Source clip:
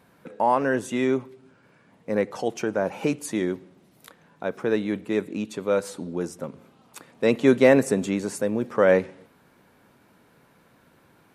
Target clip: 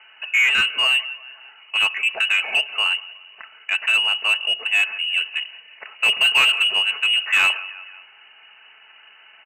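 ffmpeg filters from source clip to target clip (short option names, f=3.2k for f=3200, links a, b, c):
-filter_complex "[0:a]aecho=1:1:4.5:0.44,atempo=1.2,lowpass=f=2.6k:t=q:w=0.5098,lowpass=f=2.6k:t=q:w=0.6013,lowpass=f=2.6k:t=q:w=0.9,lowpass=f=2.6k:t=q:w=2.563,afreqshift=-3100,asplit=2[a][b];[b]aecho=0:1:176|352|528:0.0631|0.0341|0.0184[c];[a][c]amix=inputs=2:normalize=0,asplit=2[d][e];[e]highpass=f=720:p=1,volume=20dB,asoftclip=type=tanh:threshold=-4dB[f];[d][f]amix=inputs=2:normalize=0,lowpass=f=1.6k:p=1,volume=-6dB"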